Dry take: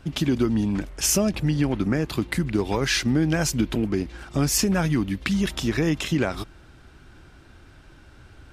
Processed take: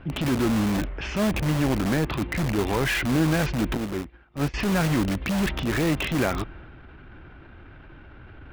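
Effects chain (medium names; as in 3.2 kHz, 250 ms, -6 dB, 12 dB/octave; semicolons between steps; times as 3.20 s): low-pass 2.8 kHz 24 dB/octave; transient shaper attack -7 dB, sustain +3 dB; in parallel at -5 dB: integer overflow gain 23 dB; 3.77–4.54 s: on the sum: upward expansion 2.5:1, over -36 dBFS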